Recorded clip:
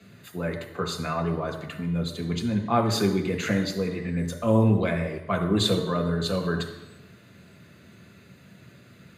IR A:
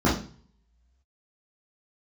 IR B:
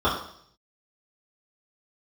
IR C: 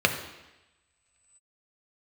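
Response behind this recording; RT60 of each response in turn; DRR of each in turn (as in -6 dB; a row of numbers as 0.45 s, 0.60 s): C; 0.45 s, 0.65 s, 1.0 s; -7.5 dB, -11.0 dB, 4.5 dB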